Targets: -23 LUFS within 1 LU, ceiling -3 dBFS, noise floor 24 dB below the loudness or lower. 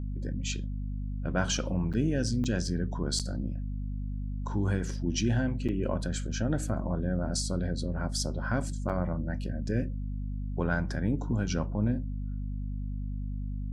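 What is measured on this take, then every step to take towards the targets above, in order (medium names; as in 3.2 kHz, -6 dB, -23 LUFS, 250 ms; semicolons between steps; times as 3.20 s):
dropouts 5; longest dropout 7.1 ms; hum 50 Hz; highest harmonic 250 Hz; hum level -31 dBFS; loudness -32.0 LUFS; peak level -13.0 dBFS; loudness target -23.0 LUFS
-> interpolate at 1.93/2.44/3.19/5.68/8.89 s, 7.1 ms; de-hum 50 Hz, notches 5; trim +9 dB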